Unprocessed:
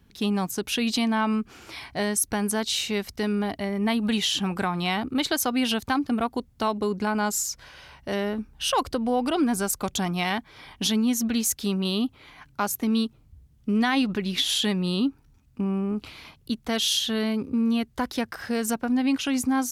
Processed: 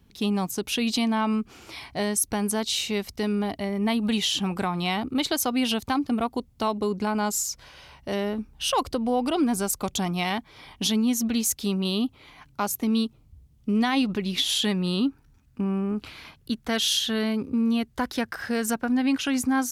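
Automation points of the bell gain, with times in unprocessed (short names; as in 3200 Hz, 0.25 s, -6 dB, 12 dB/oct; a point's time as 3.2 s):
bell 1600 Hz 0.49 oct
14.46 s -5 dB
14.9 s +4.5 dB
16.97 s +4.5 dB
17.73 s -3 dB
18.12 s +4 dB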